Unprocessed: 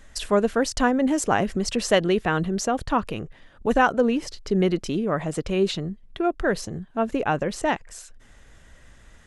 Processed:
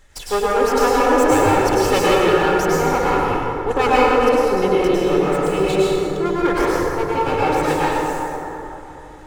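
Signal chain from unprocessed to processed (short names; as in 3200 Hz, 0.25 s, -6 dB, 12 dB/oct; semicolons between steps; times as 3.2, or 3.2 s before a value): minimum comb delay 2.3 ms; plate-style reverb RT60 3.4 s, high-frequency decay 0.4×, pre-delay 90 ms, DRR -8 dB; gain -1 dB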